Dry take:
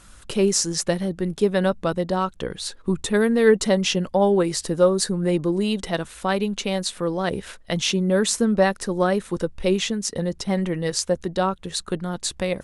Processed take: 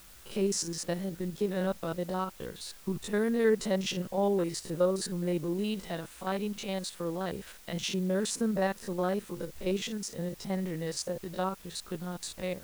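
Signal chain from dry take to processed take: spectrogram pixelated in time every 50 ms; added noise white -46 dBFS; trim -9 dB

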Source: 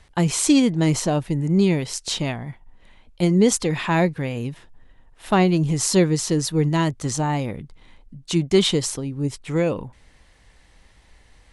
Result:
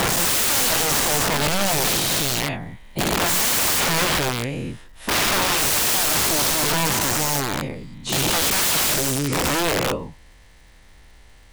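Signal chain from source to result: every event in the spectrogram widened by 480 ms; integer overflow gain 12 dB; crackle 490 per s -46 dBFS; trim -3 dB

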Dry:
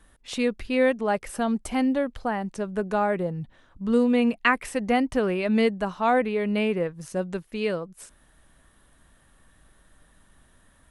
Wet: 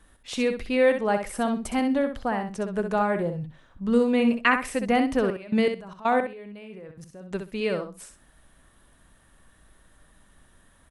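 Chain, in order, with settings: 5.30–7.31 s: level held to a coarse grid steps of 21 dB; feedback delay 64 ms, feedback 17%, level -7.5 dB

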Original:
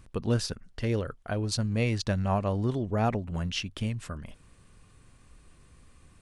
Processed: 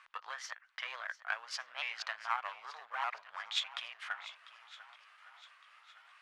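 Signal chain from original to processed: sawtooth pitch modulation +4 st, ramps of 607 ms; low-pass 2.4 kHz 12 dB/octave; compression 3:1, threshold -33 dBFS, peak gain reduction 9.5 dB; Chebyshev shaper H 4 -13 dB, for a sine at -10.5 dBFS; in parallel at -9.5 dB: one-sided clip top -40 dBFS; on the sum: inverse Chebyshev high-pass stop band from 320 Hz, stop band 60 dB; on a send: shuffle delay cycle 1161 ms, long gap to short 1.5:1, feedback 37%, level -16.5 dB; on the sum: trim +7 dB

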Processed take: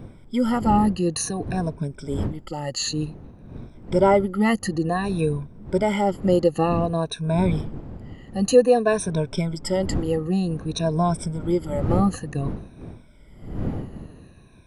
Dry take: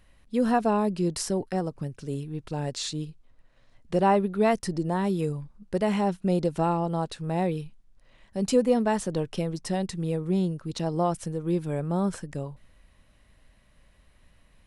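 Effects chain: drifting ripple filter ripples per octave 1.6, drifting -0.54 Hz, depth 23 dB; wind noise 210 Hz -33 dBFS

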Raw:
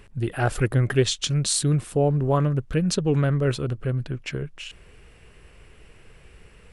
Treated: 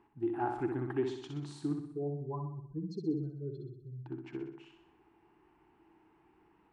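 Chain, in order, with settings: 1.73–4.04 s: spectral contrast enhancement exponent 2.9; two resonant band-passes 530 Hz, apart 1.4 oct; flutter echo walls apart 10.8 m, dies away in 0.69 s

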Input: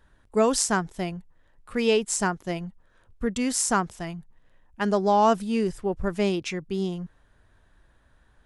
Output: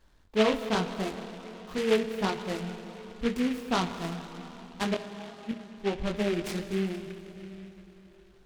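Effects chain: low-pass that closes with the level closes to 1.4 kHz, closed at -21.5 dBFS; 4.94–5.84 s: inverted gate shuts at -21 dBFS, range -30 dB; chorus 0.86 Hz, delay 20 ms, depth 3.8 ms; reverberation RT60 4.2 s, pre-delay 27 ms, DRR 8.5 dB; delay time shaken by noise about 2.1 kHz, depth 0.093 ms

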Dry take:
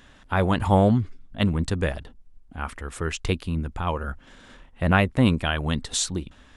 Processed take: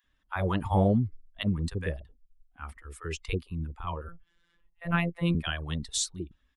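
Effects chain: expander on every frequency bin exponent 1.5; 4.04–5.31 s: robot voice 171 Hz; bands offset in time highs, lows 40 ms, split 680 Hz; trim -3 dB

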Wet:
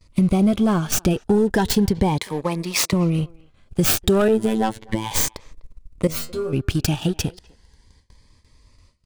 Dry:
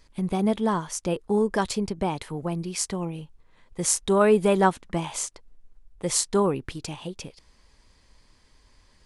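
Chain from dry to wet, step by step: tracing distortion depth 0.41 ms; 2.18–2.93 s: frequency weighting A; gate with hold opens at -48 dBFS; peaking EQ 86 Hz +8.5 dB 1.7 oct; waveshaping leveller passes 2; compression 4:1, threshold -21 dBFS, peak gain reduction 9.5 dB; 4.28–5.11 s: robot voice 110 Hz; 6.07–6.53 s: inharmonic resonator 78 Hz, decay 0.47 s, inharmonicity 0.002; speakerphone echo 250 ms, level -24 dB; Shepard-style phaser rising 0.34 Hz; trim +6 dB

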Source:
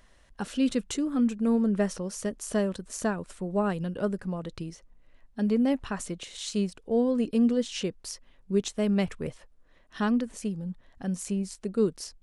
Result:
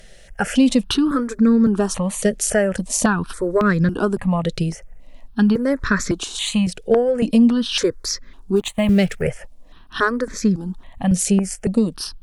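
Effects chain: 8.56–9.22 s: companding laws mixed up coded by A; dynamic bell 1.6 kHz, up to +5 dB, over -49 dBFS, Q 1.1; compression, threshold -26 dBFS, peak gain reduction 8 dB; sine folder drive 13 dB, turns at -3.5 dBFS; stepped phaser 3.6 Hz 280–2900 Hz

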